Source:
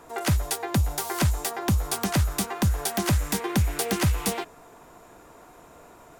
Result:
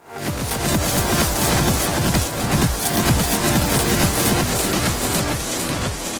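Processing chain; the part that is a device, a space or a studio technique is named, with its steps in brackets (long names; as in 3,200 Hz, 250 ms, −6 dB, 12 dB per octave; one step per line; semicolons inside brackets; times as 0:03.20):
peak hold with a rise ahead of every peak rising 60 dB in 0.41 s
0:01.81–0:02.44: noise gate −21 dBFS, range −16 dB
repeating echo 380 ms, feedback 45%, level −4 dB
delay with pitch and tempo change per echo 81 ms, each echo −3 semitones, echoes 2
video call (high-pass filter 160 Hz 6 dB per octave; automatic gain control gain up to 7 dB; level −1.5 dB; Opus 16 kbit/s 48,000 Hz)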